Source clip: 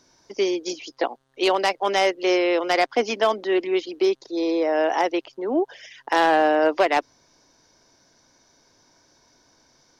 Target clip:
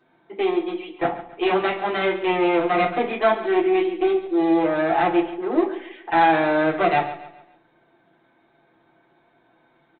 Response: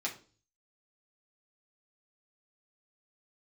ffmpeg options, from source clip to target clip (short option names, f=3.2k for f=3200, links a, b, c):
-filter_complex "[0:a]lowpass=f=2.1k:p=1,aecho=1:1:5.8:0.43,aresample=8000,aeval=exprs='clip(val(0),-1,0.0562)':c=same,aresample=44100,aecho=1:1:139|278|417|556:0.2|0.0778|0.0303|0.0118[a];[1:a]atrim=start_sample=2205,afade=t=out:st=0.38:d=0.01,atrim=end_sample=17199[b];[a][b]afir=irnorm=-1:irlink=0"